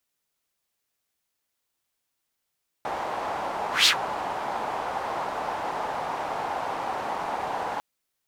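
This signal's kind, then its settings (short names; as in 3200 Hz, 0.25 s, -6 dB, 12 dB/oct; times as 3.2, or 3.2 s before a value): whoosh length 4.95 s, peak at 1.02, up 0.17 s, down 0.10 s, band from 840 Hz, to 4100 Hz, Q 2.8, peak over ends 14 dB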